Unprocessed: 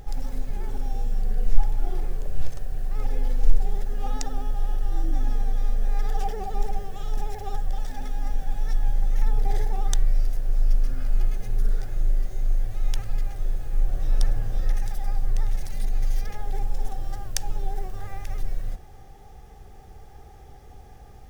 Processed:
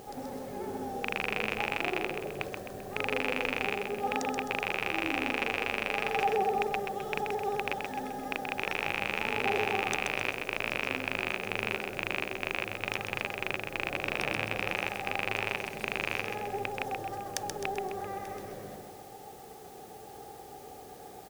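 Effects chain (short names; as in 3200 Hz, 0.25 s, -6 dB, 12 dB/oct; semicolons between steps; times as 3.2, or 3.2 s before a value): rattling part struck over -23 dBFS, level -11 dBFS; HPF 340 Hz 12 dB/oct; tilt shelf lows +8.5 dB, about 1200 Hz; in parallel at -8 dB: requantised 8-bit, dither triangular; on the sum: feedback echo 0.13 s, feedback 46%, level -5 dB; gain -2 dB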